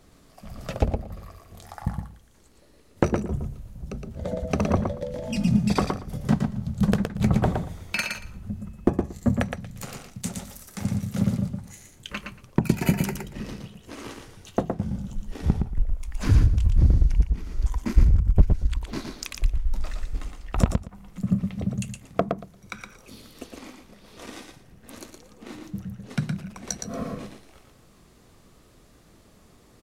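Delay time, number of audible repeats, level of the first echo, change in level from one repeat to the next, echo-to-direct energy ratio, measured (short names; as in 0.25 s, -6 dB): 0.116 s, 2, -5.0 dB, -16.5 dB, -5.0 dB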